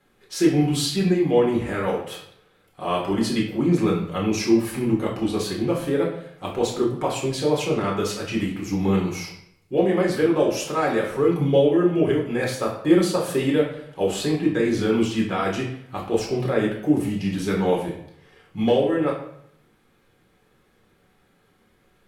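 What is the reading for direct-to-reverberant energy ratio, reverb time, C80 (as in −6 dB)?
−3.0 dB, 0.70 s, 9.0 dB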